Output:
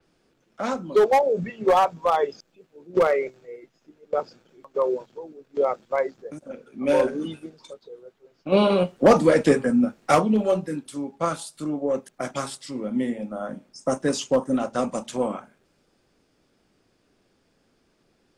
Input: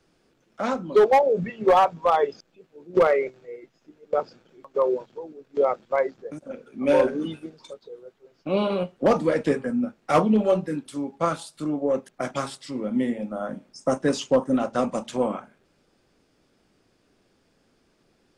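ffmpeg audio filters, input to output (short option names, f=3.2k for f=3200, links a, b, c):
-filter_complex "[0:a]asettb=1/sr,asplit=3[a][b][c];[a]atrim=end=8.524[d];[b]atrim=start=8.52:end=10.15,asetpts=PTS-STARTPTS,afade=t=in:d=0.004:c=qsin,afade=t=out:st=1.626:d=0.004:c=qsin,acontrast=64[e];[c]atrim=start=10.146[f];[d][e]acrossfade=d=0.004:c1=hsin:c2=qsin[g];[g][f]acrossfade=d=0.004:c1=qsin:c2=hsin,adynamicequalizer=threshold=0.00631:dfrequency=5200:dqfactor=0.7:tfrequency=5200:tqfactor=0.7:attack=5:release=100:ratio=0.375:range=3.5:mode=boostabove:tftype=highshelf,volume=-1dB"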